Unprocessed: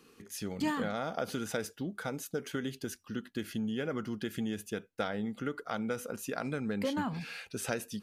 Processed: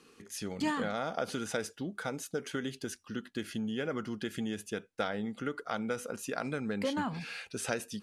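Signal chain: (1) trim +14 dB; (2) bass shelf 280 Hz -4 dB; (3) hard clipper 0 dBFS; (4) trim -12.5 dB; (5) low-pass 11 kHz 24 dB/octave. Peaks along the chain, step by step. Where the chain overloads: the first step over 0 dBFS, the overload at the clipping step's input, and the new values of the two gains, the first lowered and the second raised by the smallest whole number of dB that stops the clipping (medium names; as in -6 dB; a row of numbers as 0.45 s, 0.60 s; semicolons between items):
-5.5 dBFS, -5.5 dBFS, -5.5 dBFS, -18.0 dBFS, -18.0 dBFS; nothing clips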